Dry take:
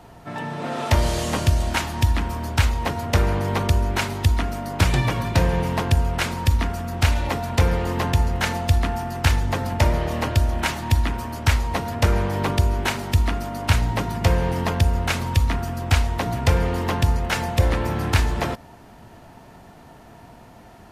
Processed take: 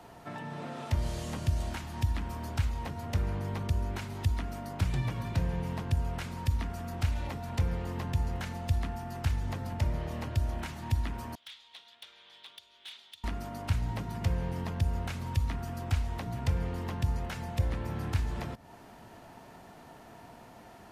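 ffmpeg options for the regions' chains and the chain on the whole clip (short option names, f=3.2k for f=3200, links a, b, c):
-filter_complex "[0:a]asettb=1/sr,asplit=3[a][b][c];[a]atrim=end=11.354[d];[b]atrim=start=11.35:end=13.24,asetpts=PTS-STARTPTS,afade=t=in:d=0.004:c=qsin,afade=t=out:st=1.886:d=0.004:c=qsin,acompressor=threshold=-20dB:ratio=2:attack=3.2:release=140:knee=1:detection=peak,bandpass=f=3.5k:t=q:w=7.4,asoftclip=type=hard:threshold=-35.5dB[e];[c]atrim=start=13.236[f];[d][e]acrossfade=d=0.004:c1=hsin:c2=qsin[g];[g][f]acrossfade=d=0.004:c1=qsin:c2=hsin,lowshelf=f=140:g=-8,acrossover=split=200[h][i];[i]acompressor=threshold=-36dB:ratio=6[j];[h][j]amix=inputs=2:normalize=0,volume=-4dB"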